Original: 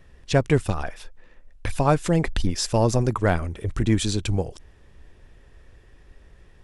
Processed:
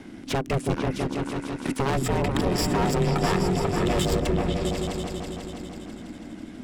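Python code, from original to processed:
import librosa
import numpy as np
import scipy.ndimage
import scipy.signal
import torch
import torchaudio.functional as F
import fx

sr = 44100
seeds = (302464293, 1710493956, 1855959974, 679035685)

y = fx.rattle_buzz(x, sr, strikes_db=-25.0, level_db=-29.0)
y = fx.ripple_eq(y, sr, per_octave=1.7, db=17, at=(1.92, 4.24))
y = fx.clip_asym(y, sr, top_db=-35.0, bottom_db=-16.5)
y = y * np.sin(2.0 * np.pi * 270.0 * np.arange(len(y)) / sr)
y = fx.echo_opening(y, sr, ms=164, hz=200, octaves=2, feedback_pct=70, wet_db=0)
y = fx.band_squash(y, sr, depth_pct=40)
y = y * 10.0 ** (2.5 / 20.0)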